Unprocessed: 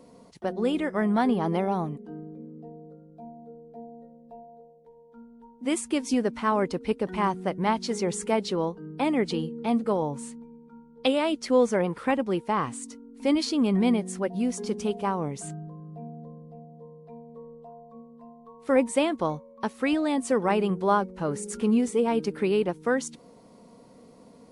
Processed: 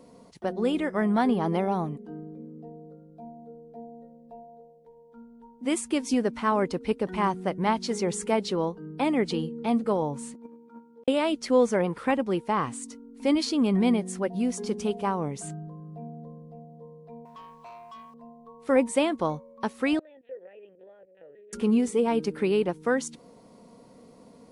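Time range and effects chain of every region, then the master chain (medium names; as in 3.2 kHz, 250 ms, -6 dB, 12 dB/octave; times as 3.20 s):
10.34–11.08 s: gate -46 dBFS, range -12 dB + high-pass 240 Hz 24 dB/octave + compressor with a negative ratio -51 dBFS, ratio -0.5
17.25–18.14 s: resonant low shelf 690 Hz -13.5 dB, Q 3 + waveshaping leveller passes 3
19.99–21.53 s: LPC vocoder at 8 kHz pitch kept + compression 10:1, threshold -31 dBFS + vowel filter e
whole clip: none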